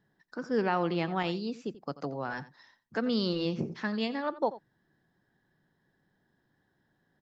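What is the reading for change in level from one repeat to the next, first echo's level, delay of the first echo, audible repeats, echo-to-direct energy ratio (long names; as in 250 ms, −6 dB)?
repeats not evenly spaced, −16.5 dB, 87 ms, 1, −16.5 dB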